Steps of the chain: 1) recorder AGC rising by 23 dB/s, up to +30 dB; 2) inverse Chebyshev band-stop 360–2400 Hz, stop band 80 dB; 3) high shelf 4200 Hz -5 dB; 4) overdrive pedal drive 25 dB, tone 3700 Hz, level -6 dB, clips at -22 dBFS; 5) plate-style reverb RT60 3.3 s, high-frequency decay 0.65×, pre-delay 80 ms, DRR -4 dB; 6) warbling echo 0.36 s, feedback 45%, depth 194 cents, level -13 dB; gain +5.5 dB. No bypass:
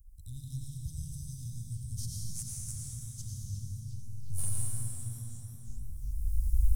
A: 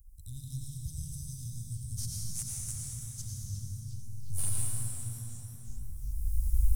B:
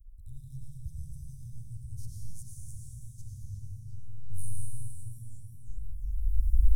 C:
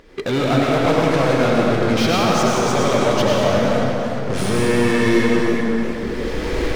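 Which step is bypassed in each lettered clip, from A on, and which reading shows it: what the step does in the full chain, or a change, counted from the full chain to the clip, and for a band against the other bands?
3, 125 Hz band -3.0 dB; 4, momentary loudness spread change +1 LU; 2, 250 Hz band +21.0 dB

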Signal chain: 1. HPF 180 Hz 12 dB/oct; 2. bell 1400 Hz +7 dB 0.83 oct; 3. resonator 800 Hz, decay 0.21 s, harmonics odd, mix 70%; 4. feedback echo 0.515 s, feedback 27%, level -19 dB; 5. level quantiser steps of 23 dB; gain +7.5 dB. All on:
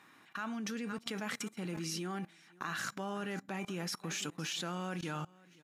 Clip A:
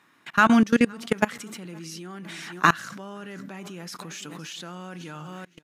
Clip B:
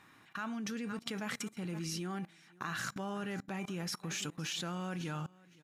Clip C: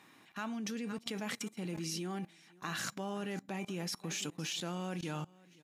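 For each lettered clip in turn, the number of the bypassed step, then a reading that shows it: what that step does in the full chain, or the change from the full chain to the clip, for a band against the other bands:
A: 3, 8 kHz band -10.5 dB; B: 1, 125 Hz band +2.0 dB; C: 2, 2 kHz band -3.0 dB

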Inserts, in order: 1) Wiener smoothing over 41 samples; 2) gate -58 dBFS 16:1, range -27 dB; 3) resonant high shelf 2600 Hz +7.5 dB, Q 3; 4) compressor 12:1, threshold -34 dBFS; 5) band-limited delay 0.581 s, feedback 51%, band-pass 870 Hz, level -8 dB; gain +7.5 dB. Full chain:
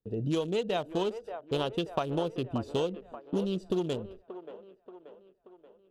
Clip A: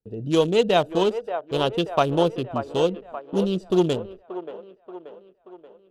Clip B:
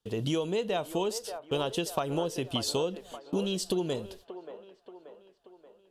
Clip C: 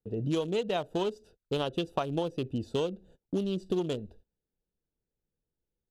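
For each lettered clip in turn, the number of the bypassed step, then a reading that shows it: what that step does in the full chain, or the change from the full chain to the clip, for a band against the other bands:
4, mean gain reduction 7.0 dB; 1, 8 kHz band +13.5 dB; 5, echo-to-direct -9.0 dB to none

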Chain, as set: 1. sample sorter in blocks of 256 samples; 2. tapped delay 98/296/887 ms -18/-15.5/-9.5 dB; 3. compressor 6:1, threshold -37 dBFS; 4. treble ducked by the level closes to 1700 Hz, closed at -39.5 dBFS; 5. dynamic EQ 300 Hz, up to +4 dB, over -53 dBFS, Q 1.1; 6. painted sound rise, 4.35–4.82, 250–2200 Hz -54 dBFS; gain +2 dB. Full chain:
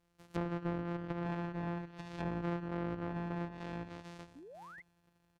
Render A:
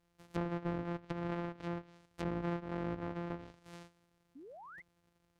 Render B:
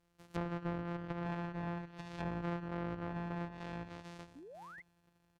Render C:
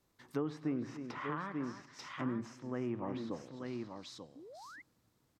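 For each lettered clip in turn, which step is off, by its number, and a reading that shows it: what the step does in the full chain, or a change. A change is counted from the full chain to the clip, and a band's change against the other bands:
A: 2, momentary loudness spread change +3 LU; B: 5, loudness change -2.0 LU; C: 1, 125 Hz band -6.0 dB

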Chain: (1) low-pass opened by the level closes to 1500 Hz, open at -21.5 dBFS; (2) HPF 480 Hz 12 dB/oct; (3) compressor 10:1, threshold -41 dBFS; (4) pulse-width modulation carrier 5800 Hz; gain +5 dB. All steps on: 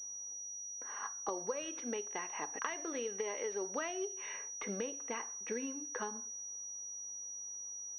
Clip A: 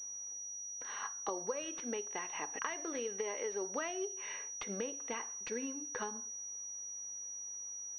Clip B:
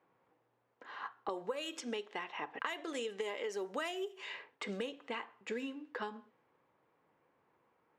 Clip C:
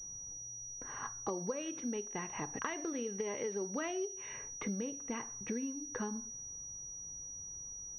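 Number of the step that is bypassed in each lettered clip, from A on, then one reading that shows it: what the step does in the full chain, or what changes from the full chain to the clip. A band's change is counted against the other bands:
1, crest factor change -2.0 dB; 4, 4 kHz band +6.0 dB; 2, 250 Hz band +7.0 dB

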